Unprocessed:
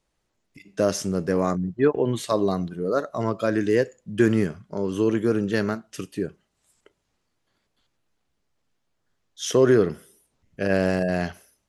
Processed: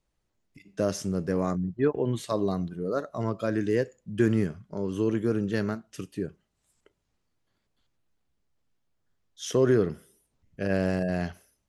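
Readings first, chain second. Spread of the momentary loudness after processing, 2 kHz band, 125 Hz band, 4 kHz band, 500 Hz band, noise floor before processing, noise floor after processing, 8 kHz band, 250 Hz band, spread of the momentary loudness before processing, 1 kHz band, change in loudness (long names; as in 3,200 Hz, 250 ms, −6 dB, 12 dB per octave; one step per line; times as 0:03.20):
11 LU, −6.5 dB, −2.0 dB, −6.5 dB, −5.5 dB, −75 dBFS, −78 dBFS, −6.5 dB, −4.0 dB, 11 LU, −6.0 dB, −4.5 dB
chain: low-shelf EQ 200 Hz +7 dB
level −6.5 dB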